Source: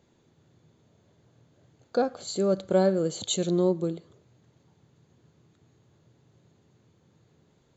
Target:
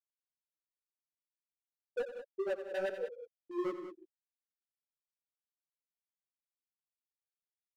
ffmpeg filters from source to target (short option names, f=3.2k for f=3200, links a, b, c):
-af "highpass=f=230:p=1,afftfilt=real='re*gte(hypot(re,im),0.447)':imag='im*gte(hypot(re,im),0.447)':win_size=1024:overlap=0.75,equalizer=f=3k:t=o:w=0.52:g=14.5,asoftclip=type=hard:threshold=-29dB,flanger=delay=4.3:depth=6.2:regen=3:speed=1.7:shape=sinusoidal,aecho=1:1:89|153|190:0.251|0.141|0.266,volume=-1dB"